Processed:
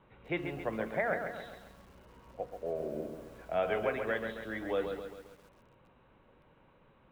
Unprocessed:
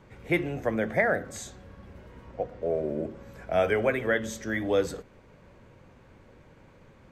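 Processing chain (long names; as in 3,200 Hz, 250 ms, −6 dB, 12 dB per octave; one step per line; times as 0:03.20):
Chebyshev low-pass with heavy ripple 4,000 Hz, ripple 6 dB
parametric band 91 Hz −6.5 dB 0.38 octaves
feedback echo at a low word length 135 ms, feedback 55%, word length 9 bits, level −6.5 dB
level −4 dB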